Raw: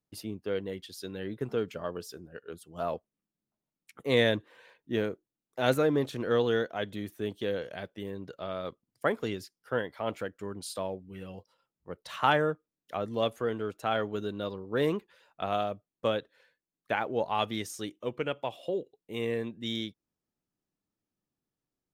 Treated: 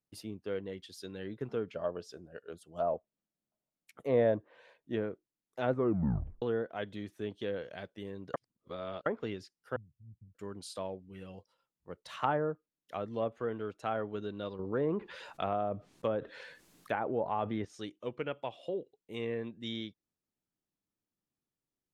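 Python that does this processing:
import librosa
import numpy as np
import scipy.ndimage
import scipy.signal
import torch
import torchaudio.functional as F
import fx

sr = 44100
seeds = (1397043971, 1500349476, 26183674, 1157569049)

y = fx.peak_eq(x, sr, hz=630.0, db=8.0, octaves=0.56, at=(1.73, 4.95))
y = fx.cheby2_lowpass(y, sr, hz=620.0, order=4, stop_db=70, at=(9.76, 10.35))
y = fx.env_flatten(y, sr, amount_pct=50, at=(14.59, 17.65))
y = fx.edit(y, sr, fx.tape_stop(start_s=5.71, length_s=0.71),
    fx.reverse_span(start_s=8.34, length_s=0.72), tone=tone)
y = fx.env_lowpass_down(y, sr, base_hz=1100.0, full_db=-23.5)
y = y * 10.0 ** (-4.5 / 20.0)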